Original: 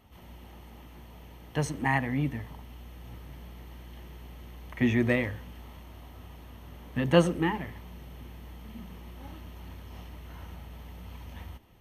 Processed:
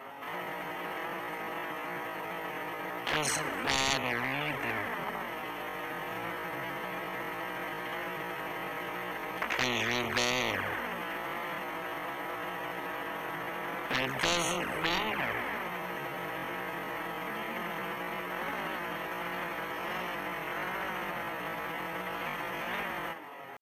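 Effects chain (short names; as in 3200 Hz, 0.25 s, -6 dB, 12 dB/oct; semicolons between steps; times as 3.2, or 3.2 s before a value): HPF 490 Hz 12 dB/oct; resonant high shelf 2700 Hz -11.5 dB, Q 1.5; tempo 0.5×; soft clip -20.5 dBFS, distortion -13 dB; envelope flanger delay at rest 7.8 ms, full sweep at -30 dBFS; spectral compressor 4:1; gain +7.5 dB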